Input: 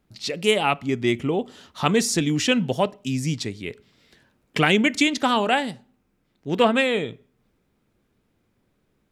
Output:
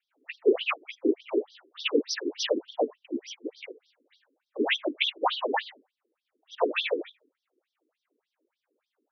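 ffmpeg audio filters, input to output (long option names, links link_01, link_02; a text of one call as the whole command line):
ffmpeg -i in.wav -af "afftfilt=real='hypot(re,im)*cos(2*PI*random(0))':imag='hypot(re,im)*sin(2*PI*random(1))':win_size=512:overlap=0.75,afftfilt=real='re*between(b*sr/1024,330*pow(4500/330,0.5+0.5*sin(2*PI*3.4*pts/sr))/1.41,330*pow(4500/330,0.5+0.5*sin(2*PI*3.4*pts/sr))*1.41)':imag='im*between(b*sr/1024,330*pow(4500/330,0.5+0.5*sin(2*PI*3.4*pts/sr))/1.41,330*pow(4500/330,0.5+0.5*sin(2*PI*3.4*pts/sr))*1.41)':win_size=1024:overlap=0.75,volume=5.5dB" out.wav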